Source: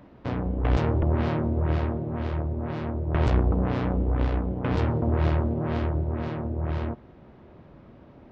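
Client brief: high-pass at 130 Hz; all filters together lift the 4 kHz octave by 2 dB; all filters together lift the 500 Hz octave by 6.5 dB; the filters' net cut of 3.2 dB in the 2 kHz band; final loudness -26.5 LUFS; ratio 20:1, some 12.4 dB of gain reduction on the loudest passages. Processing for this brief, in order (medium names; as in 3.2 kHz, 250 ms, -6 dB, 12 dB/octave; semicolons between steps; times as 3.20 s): high-pass 130 Hz; peaking EQ 500 Hz +8.5 dB; peaking EQ 2 kHz -6 dB; peaking EQ 4 kHz +5 dB; compression 20:1, threshold -31 dBFS; trim +10 dB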